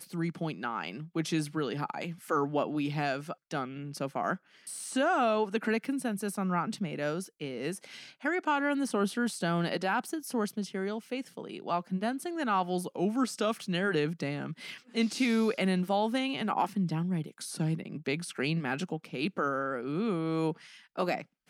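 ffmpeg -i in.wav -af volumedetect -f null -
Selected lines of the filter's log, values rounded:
mean_volume: -31.9 dB
max_volume: -17.5 dB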